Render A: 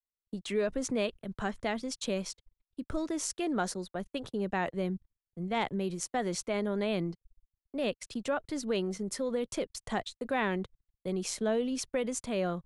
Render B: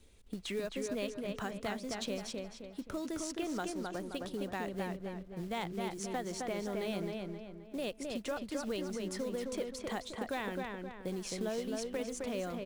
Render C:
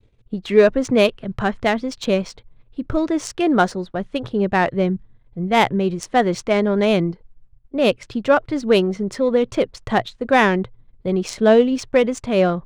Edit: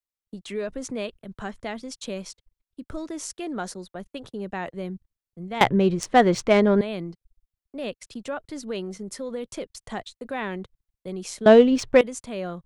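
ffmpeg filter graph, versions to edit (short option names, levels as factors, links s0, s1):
-filter_complex "[2:a]asplit=2[s0][s1];[0:a]asplit=3[s2][s3][s4];[s2]atrim=end=5.612[s5];[s0]atrim=start=5.608:end=6.812[s6];[s3]atrim=start=6.808:end=11.462[s7];[s1]atrim=start=11.458:end=12.012[s8];[s4]atrim=start=12.008[s9];[s5][s6]acrossfade=d=0.004:c1=hsin:c2=hsin[s10];[s10][s7]acrossfade=d=0.004:c1=hsin:c2=hsin[s11];[s11][s8]acrossfade=d=0.004:c1=hsin:c2=hsin[s12];[s12][s9]acrossfade=d=0.004:c1=hsin:c2=hsin"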